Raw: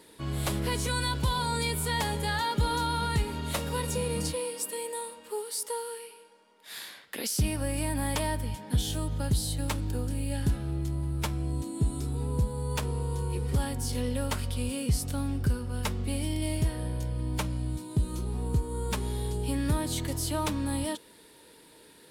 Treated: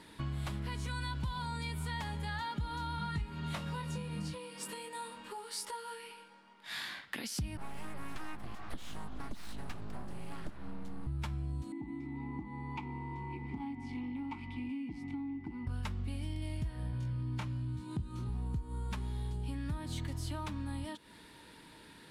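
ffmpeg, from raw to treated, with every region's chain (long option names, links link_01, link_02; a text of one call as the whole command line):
ffmpeg -i in.wav -filter_complex "[0:a]asettb=1/sr,asplit=3[link_01][link_02][link_03];[link_01]atrim=end=2.964[link_04];[link_02]atrim=start=2.96:end=7.01,asetpts=PTS-STARTPTS,afade=type=in:duration=0.004:curve=qsin,afade=type=out:start_time=4.046:duration=0.004:curve=qsin,highshelf=frequency=10000:gain=-5,asplit=2[link_05][link_06];[link_06]adelay=20,volume=-3.5dB[link_07];[link_05][link_07]amix=inputs=2:normalize=0,atrim=end_sample=178605[link_08];[link_03]atrim=start=7.006[link_09];[link_04][link_08]acrossfade=duration=0.004:curve1=hsin:curve2=qsin[link_10];[link_10][link_09]acrossfade=duration=0.004:curve1=qsin:curve2=hsin,asettb=1/sr,asplit=3[link_11][link_12][link_13];[link_11]atrim=end=7.574[link_14];[link_12]atrim=start=7.57:end=11.07,asetpts=PTS-STARTPTS,afade=type=in:duration=0.004:curve=qsin,afade=type=out:start_time=3.496:duration=0.004:curve=qsin,highpass=frequency=120:width=0.5412,highpass=frequency=120:width=1.3066,aeval=exprs='abs(val(0))':channel_layout=same,adynamicequalizer=threshold=0.00282:dfrequency=2200:dqfactor=0.7:tfrequency=2200:tqfactor=0.7:attack=5:release=100:ratio=0.375:range=2.5:mode=cutabove:tftype=highshelf[link_15];[link_13]atrim=start=11.066[link_16];[link_14][link_15]acrossfade=duration=0.004:curve1=hsin:curve2=qsin[link_17];[link_17][link_16]acrossfade=duration=0.004:curve1=qsin:curve2=hsin,asettb=1/sr,asplit=3[link_18][link_19][link_20];[link_18]atrim=end=11.724[link_21];[link_19]atrim=start=11.72:end=15.67,asetpts=PTS-STARTPTS,afade=type=in:duration=0.004:curve=qsin,afade=type=out:start_time=3.946:duration=0.004:curve=qsin,aeval=exprs='0.141*sin(PI/2*1.78*val(0)/0.141)':channel_layout=same,aeval=exprs='val(0)+0.0141*sin(2*PI*2000*n/s)':channel_layout=same,asplit=3[link_22][link_23][link_24];[link_22]bandpass=frequency=300:width_type=q:width=8,volume=0dB[link_25];[link_23]bandpass=frequency=870:width_type=q:width=8,volume=-6dB[link_26];[link_24]bandpass=frequency=2240:width_type=q:width=8,volume=-9dB[link_27];[link_25][link_26][link_27]amix=inputs=3:normalize=0[link_28];[link_20]atrim=start=15.666[link_29];[link_21][link_28]acrossfade=duration=0.004:curve1=hsin:curve2=qsin[link_30];[link_30][link_29]acrossfade=duration=0.004:curve1=qsin:curve2=hsin,asettb=1/sr,asplit=3[link_31][link_32][link_33];[link_31]atrim=end=16.914[link_34];[link_32]atrim=start=16.91:end=18.29,asetpts=PTS-STARTPTS,afade=type=in:duration=0.004:curve=qsin,afade=type=out:start_time=1.376:duration=0.004:curve=qsin,highpass=58,highshelf=frequency=9800:gain=-8,asplit=2[link_35][link_36];[link_36]adelay=25,volume=-4dB[link_37];[link_35][link_37]amix=inputs=2:normalize=0,atrim=end_sample=60858[link_38];[link_33]atrim=start=18.286[link_39];[link_34][link_38]acrossfade=duration=0.004:curve1=hsin:curve2=qsin[link_40];[link_40][link_39]acrossfade=duration=0.004:curve1=qsin:curve2=hsin,aemphasis=mode=reproduction:type=75kf,acompressor=threshold=-40dB:ratio=6,equalizer=frequency=470:width=1.3:gain=-12.5,volume=6dB" out.wav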